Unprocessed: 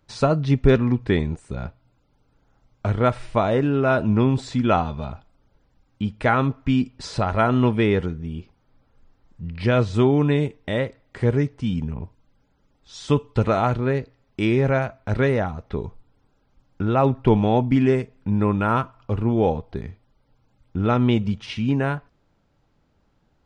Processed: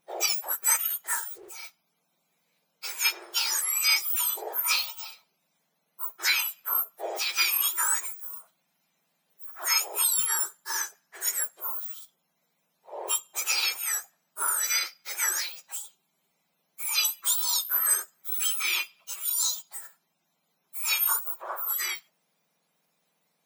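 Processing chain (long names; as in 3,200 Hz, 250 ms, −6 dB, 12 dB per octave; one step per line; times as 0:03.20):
frequency axis turned over on the octave scale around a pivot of 1,800 Hz
0:01.04–0:01.63: highs frequency-modulated by the lows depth 0.16 ms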